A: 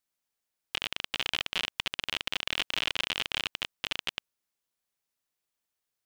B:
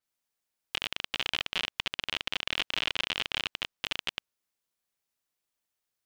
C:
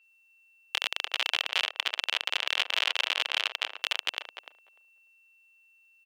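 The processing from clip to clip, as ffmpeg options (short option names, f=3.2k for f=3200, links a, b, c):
-af "adynamicequalizer=threshold=0.00398:dfrequency=6700:dqfactor=0.7:tfrequency=6700:tqfactor=0.7:attack=5:release=100:ratio=0.375:range=3:mode=cutabove:tftype=highshelf"
-filter_complex "[0:a]aeval=exprs='val(0)+0.000562*sin(2*PI*2700*n/s)':c=same,highpass=f=510:w=0.5412,highpass=f=510:w=1.3066,asplit=2[a][b];[b]adelay=297,lowpass=f=990:p=1,volume=-5dB,asplit=2[c][d];[d]adelay=297,lowpass=f=990:p=1,volume=0.15,asplit=2[e][f];[f]adelay=297,lowpass=f=990:p=1,volume=0.15[g];[a][c][e][g]amix=inputs=4:normalize=0,volume=3.5dB"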